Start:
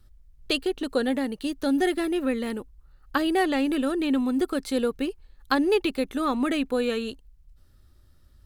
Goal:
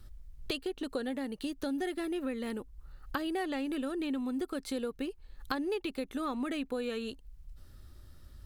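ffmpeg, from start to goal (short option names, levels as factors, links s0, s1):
-af "acompressor=threshold=0.00794:ratio=3,volume=1.68"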